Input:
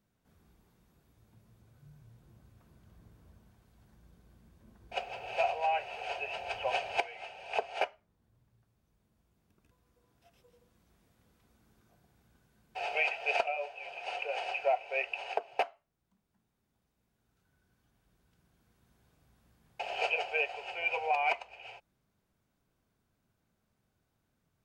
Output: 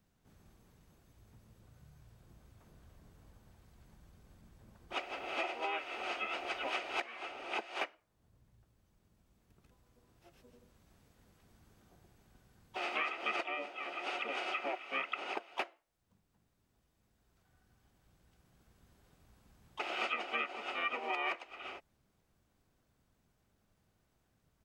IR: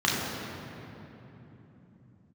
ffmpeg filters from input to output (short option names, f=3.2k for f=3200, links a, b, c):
-filter_complex "[0:a]asplit=4[a][b][c][d];[b]asetrate=22050,aresample=44100,atempo=2,volume=-1dB[e];[c]asetrate=35002,aresample=44100,atempo=1.25992,volume=-6dB[f];[d]asetrate=55563,aresample=44100,atempo=0.793701,volume=-12dB[g];[a][e][f][g]amix=inputs=4:normalize=0,acrossover=split=460|1300[h][i][j];[h]acompressor=threshold=-57dB:ratio=4[k];[i]acompressor=threshold=-42dB:ratio=4[l];[j]acompressor=threshold=-36dB:ratio=4[m];[k][l][m]amix=inputs=3:normalize=0"